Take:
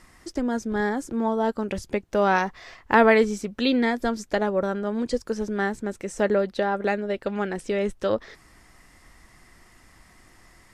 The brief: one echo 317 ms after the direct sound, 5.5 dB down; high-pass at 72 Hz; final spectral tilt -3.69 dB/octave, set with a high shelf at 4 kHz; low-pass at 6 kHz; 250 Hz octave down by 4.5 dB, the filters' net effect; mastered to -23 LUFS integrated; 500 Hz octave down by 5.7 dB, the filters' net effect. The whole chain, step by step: high-pass 72 Hz; low-pass 6 kHz; peaking EQ 250 Hz -4 dB; peaking EQ 500 Hz -6 dB; treble shelf 4 kHz -8 dB; delay 317 ms -5.5 dB; trim +5 dB

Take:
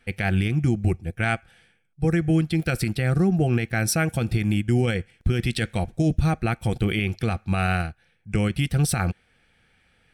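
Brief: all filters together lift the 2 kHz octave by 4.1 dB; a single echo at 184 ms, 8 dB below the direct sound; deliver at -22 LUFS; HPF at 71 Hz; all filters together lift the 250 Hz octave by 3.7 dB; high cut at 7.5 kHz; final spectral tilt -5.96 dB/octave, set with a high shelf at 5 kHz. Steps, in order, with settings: high-pass 71 Hz; low-pass 7.5 kHz; peaking EQ 250 Hz +5.5 dB; peaking EQ 2 kHz +4.5 dB; treble shelf 5 kHz +5 dB; delay 184 ms -8 dB; trim -1 dB

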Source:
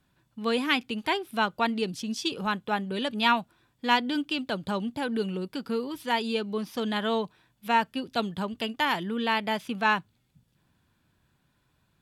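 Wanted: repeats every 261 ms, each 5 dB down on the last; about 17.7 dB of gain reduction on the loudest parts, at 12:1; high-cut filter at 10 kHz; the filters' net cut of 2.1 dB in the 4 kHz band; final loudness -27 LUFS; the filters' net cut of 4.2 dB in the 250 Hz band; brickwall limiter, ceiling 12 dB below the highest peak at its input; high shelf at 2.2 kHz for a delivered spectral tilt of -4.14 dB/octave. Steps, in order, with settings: low-pass 10 kHz; peaking EQ 250 Hz -5 dB; treble shelf 2.2 kHz +5.5 dB; peaking EQ 4 kHz -8.5 dB; compression 12:1, threshold -36 dBFS; peak limiter -32.5 dBFS; feedback delay 261 ms, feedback 56%, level -5 dB; trim +14.5 dB

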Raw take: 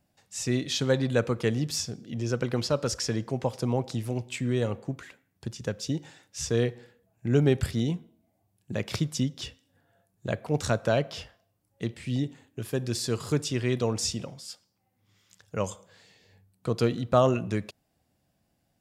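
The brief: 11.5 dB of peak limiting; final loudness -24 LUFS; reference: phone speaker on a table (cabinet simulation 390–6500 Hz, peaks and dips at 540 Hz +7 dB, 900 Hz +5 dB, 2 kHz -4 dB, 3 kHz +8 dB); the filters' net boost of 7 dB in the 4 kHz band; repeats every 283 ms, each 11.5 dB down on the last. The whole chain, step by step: peaking EQ 4 kHz +6 dB; peak limiter -18.5 dBFS; cabinet simulation 390–6500 Hz, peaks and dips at 540 Hz +7 dB, 900 Hz +5 dB, 2 kHz -4 dB, 3 kHz +8 dB; feedback delay 283 ms, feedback 27%, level -11.5 dB; trim +8 dB

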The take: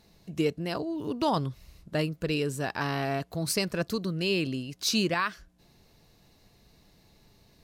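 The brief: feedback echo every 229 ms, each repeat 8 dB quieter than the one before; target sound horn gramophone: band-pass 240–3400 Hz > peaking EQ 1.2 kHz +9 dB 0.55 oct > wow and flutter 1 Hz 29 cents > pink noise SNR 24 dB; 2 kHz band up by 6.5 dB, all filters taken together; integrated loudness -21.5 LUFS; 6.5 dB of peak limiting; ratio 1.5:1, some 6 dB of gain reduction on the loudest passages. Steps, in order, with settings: peaking EQ 2 kHz +7 dB; compression 1.5:1, threshold -38 dBFS; peak limiter -24 dBFS; band-pass 240–3400 Hz; peaking EQ 1.2 kHz +9 dB 0.55 oct; feedback delay 229 ms, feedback 40%, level -8 dB; wow and flutter 1 Hz 29 cents; pink noise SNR 24 dB; trim +14 dB

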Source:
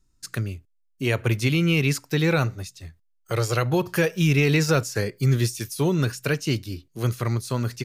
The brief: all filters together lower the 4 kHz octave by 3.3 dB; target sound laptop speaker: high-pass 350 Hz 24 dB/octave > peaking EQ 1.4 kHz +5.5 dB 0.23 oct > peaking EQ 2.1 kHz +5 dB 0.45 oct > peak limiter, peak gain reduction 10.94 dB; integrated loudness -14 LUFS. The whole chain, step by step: high-pass 350 Hz 24 dB/octave; peaking EQ 1.4 kHz +5.5 dB 0.23 oct; peaking EQ 2.1 kHz +5 dB 0.45 oct; peaking EQ 4 kHz -5.5 dB; trim +17.5 dB; peak limiter -3 dBFS

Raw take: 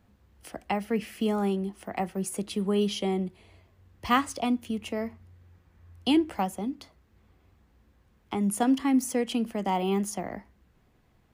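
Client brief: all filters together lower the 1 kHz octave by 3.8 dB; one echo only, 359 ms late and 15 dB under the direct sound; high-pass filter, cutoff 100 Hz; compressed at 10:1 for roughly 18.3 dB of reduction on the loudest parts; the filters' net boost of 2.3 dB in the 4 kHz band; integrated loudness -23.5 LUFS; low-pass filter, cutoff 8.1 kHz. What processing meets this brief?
high-pass 100 Hz; low-pass 8.1 kHz; peaking EQ 1 kHz -5.5 dB; peaking EQ 4 kHz +4 dB; compression 10:1, threshold -38 dBFS; delay 359 ms -15 dB; trim +19.5 dB

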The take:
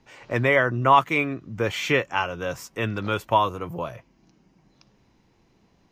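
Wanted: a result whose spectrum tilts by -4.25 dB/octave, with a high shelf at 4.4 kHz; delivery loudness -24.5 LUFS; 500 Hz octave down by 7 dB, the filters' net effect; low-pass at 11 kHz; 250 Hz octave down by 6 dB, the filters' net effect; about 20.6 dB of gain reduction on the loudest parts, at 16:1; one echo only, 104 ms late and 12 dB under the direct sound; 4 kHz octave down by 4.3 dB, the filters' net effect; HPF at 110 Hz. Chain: high-pass 110 Hz; low-pass 11 kHz; peaking EQ 250 Hz -5 dB; peaking EQ 500 Hz -7.5 dB; peaking EQ 4 kHz -9 dB; treble shelf 4.4 kHz +5.5 dB; compression 16:1, threshold -34 dBFS; delay 104 ms -12 dB; trim +14.5 dB

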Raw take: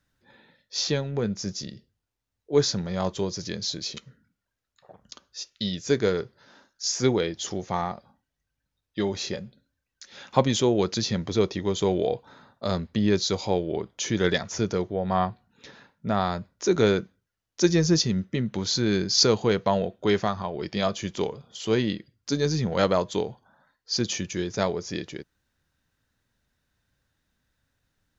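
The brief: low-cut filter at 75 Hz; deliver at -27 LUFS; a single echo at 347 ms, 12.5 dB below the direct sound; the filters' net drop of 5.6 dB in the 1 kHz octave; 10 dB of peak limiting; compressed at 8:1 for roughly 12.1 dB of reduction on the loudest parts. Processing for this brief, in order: high-pass 75 Hz; peaking EQ 1 kHz -8 dB; compression 8:1, threshold -29 dBFS; peak limiter -25.5 dBFS; delay 347 ms -12.5 dB; trim +9.5 dB

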